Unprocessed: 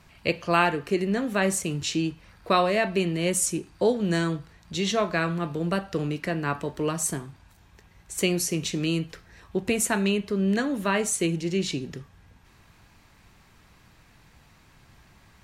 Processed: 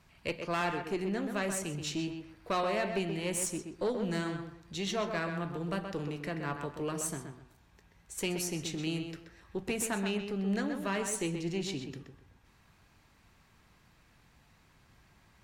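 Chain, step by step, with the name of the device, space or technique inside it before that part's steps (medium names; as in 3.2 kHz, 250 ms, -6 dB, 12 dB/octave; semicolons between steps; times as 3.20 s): rockabilly slapback (valve stage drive 17 dB, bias 0.35; tape echo 128 ms, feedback 30%, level -5 dB, low-pass 2.8 kHz); trim -7 dB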